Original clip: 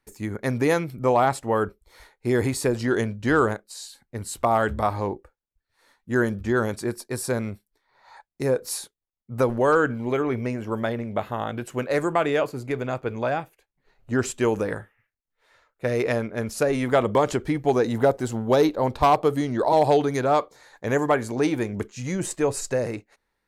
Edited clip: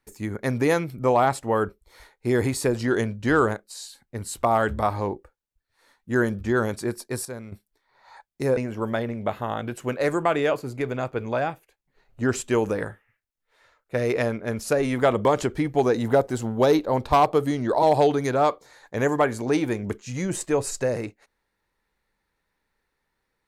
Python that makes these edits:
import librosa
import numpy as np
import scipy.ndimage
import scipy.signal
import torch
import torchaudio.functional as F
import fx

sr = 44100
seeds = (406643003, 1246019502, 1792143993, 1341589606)

y = fx.edit(x, sr, fx.clip_gain(start_s=7.25, length_s=0.27, db=-10.5),
    fx.cut(start_s=8.57, length_s=1.9), tone=tone)